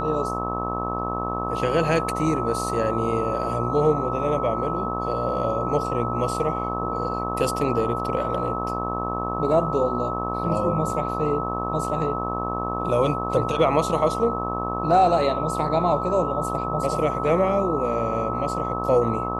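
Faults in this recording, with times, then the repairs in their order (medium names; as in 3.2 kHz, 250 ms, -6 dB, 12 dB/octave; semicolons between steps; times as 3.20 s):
buzz 60 Hz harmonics 21 -29 dBFS
whine 1.3 kHz -28 dBFS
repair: de-hum 60 Hz, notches 21; band-stop 1.3 kHz, Q 30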